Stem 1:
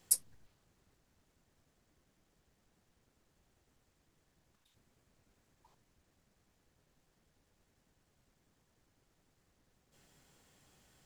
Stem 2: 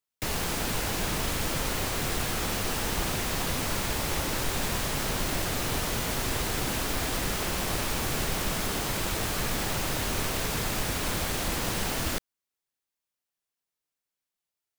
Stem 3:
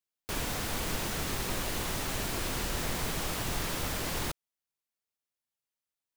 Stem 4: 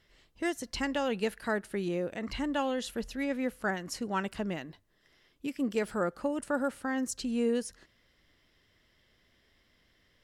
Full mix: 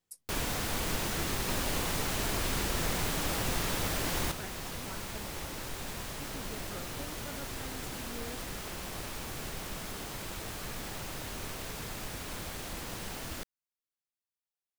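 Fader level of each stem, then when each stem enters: -19.5, -10.5, +0.5, -17.0 dB; 0.00, 1.25, 0.00, 0.75 s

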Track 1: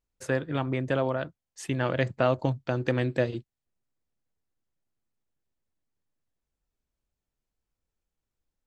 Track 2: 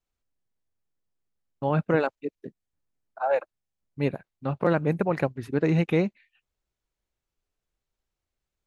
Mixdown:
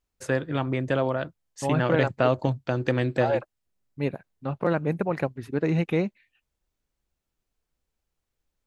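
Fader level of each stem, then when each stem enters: +2.0, -1.5 dB; 0.00, 0.00 s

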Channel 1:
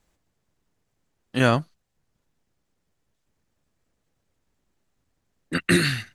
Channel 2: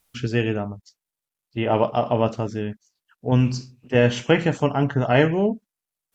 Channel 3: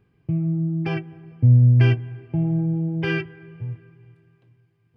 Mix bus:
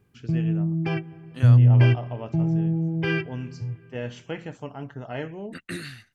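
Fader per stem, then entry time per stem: -15.0, -15.5, -1.0 dB; 0.00, 0.00, 0.00 s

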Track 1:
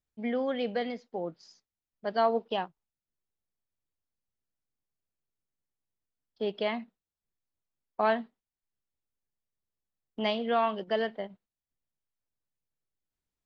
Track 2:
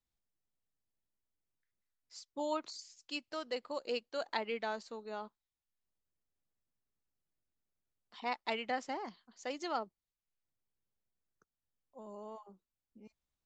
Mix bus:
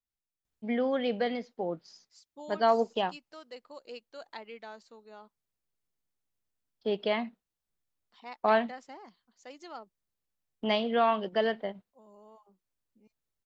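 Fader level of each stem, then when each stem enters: +1.5, -7.5 dB; 0.45, 0.00 s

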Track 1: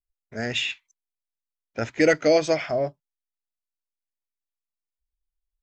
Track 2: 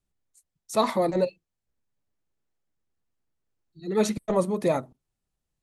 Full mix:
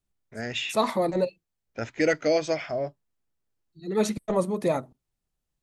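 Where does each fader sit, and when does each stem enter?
-4.5, -1.0 dB; 0.00, 0.00 s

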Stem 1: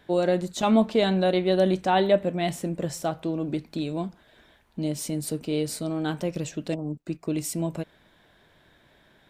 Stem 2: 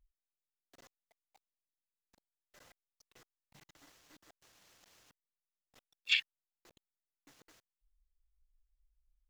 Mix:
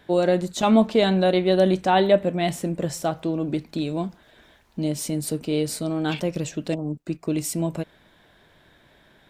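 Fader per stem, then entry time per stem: +3.0, -6.5 dB; 0.00, 0.00 s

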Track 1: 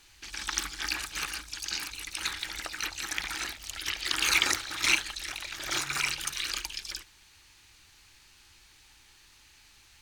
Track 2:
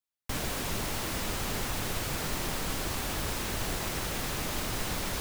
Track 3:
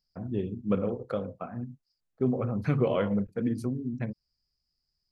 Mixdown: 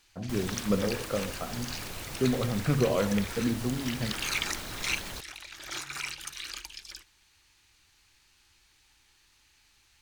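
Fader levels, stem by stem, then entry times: -6.5, -7.5, 0.0 dB; 0.00, 0.00, 0.00 s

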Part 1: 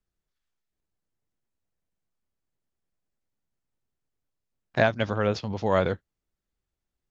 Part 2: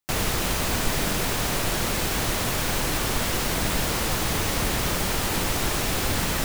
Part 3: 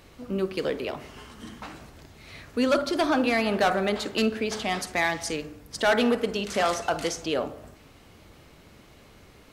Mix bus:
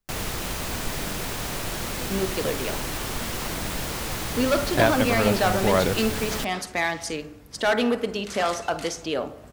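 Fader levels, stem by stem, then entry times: +1.5, -5.0, 0.0 dB; 0.00, 0.00, 1.80 s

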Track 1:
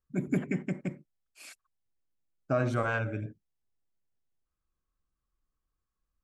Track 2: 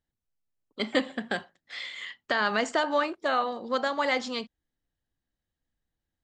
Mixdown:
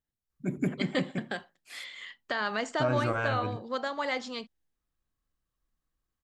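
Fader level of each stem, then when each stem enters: -0.5, -5.0 dB; 0.30, 0.00 s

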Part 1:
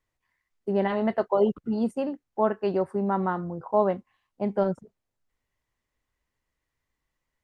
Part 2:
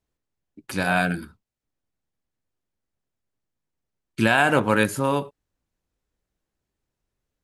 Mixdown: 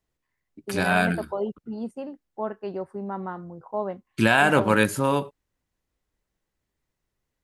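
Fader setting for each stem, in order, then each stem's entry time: -6.5, 0.0 dB; 0.00, 0.00 s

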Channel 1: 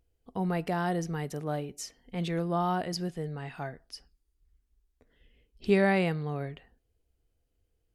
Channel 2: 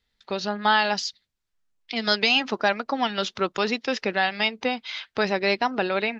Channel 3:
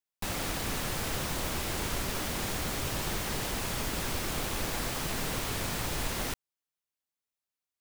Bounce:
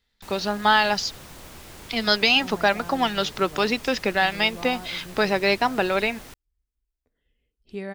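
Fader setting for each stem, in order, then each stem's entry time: -10.0, +2.0, -10.0 dB; 2.05, 0.00, 0.00 s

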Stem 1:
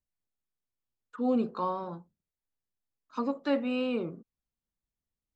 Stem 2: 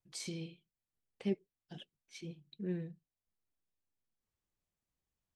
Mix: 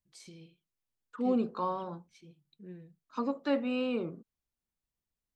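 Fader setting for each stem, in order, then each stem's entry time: -1.5, -9.5 dB; 0.00, 0.00 s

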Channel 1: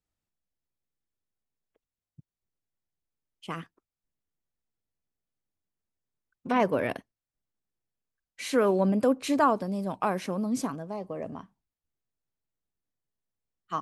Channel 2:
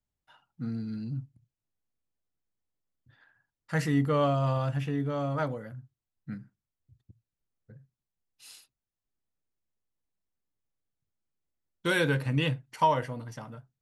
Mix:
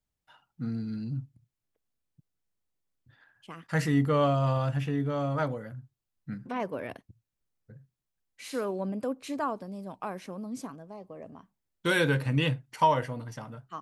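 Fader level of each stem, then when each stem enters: -8.5, +1.0 dB; 0.00, 0.00 s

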